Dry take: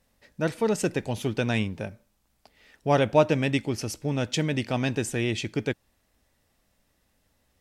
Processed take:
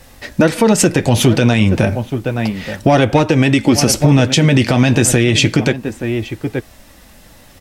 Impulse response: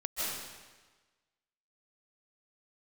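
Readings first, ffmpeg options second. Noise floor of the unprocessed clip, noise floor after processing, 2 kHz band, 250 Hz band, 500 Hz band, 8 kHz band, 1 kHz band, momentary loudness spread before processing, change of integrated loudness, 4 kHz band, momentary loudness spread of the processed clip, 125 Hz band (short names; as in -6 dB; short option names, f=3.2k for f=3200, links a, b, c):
-71 dBFS, -43 dBFS, +13.5 dB, +15.5 dB, +11.0 dB, +19.5 dB, +11.0 dB, 11 LU, +13.0 dB, +16.0 dB, 10 LU, +16.0 dB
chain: -filter_complex "[0:a]acrossover=split=510|3300[a][b][c];[b]asoftclip=type=tanh:threshold=-19.5dB[d];[a][d][c]amix=inputs=3:normalize=0,bandreject=f=430:w=12,asplit=2[e][f];[f]adelay=874.6,volume=-18dB,highshelf=f=4k:g=-19.7[g];[e][g]amix=inputs=2:normalize=0,acompressor=threshold=-31dB:ratio=16,flanger=delay=2.4:depth=6.4:regen=-51:speed=0.31:shape=sinusoidal,alimiter=level_in=31.5dB:limit=-1dB:release=50:level=0:latency=1,volume=-1dB"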